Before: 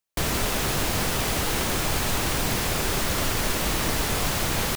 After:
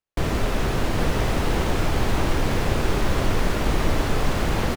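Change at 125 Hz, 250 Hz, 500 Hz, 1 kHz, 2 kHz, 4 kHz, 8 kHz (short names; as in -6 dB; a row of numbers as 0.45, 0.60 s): +5.0, +4.0, +4.0, +1.5, -1.0, -4.5, -9.5 dB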